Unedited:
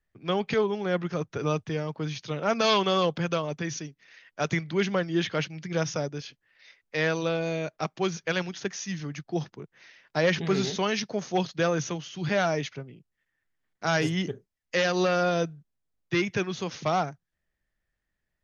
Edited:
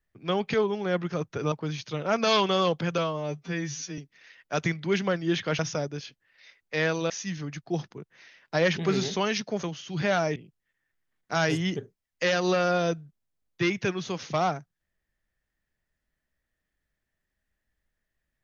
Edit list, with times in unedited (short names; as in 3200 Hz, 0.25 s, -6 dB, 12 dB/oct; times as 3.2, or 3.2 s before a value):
1.52–1.89 cut
3.35–3.85 stretch 2×
5.46–5.8 cut
7.31–8.72 cut
11.25–11.9 cut
12.63–12.88 cut